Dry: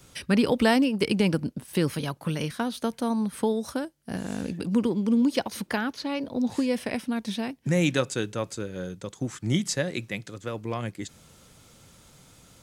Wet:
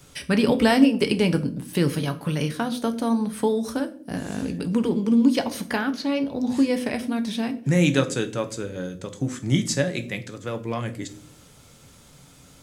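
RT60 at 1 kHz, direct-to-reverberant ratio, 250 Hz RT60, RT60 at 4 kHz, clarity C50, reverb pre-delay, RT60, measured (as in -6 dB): 0.45 s, 7.0 dB, 0.85 s, 0.35 s, 15.5 dB, 7 ms, 0.55 s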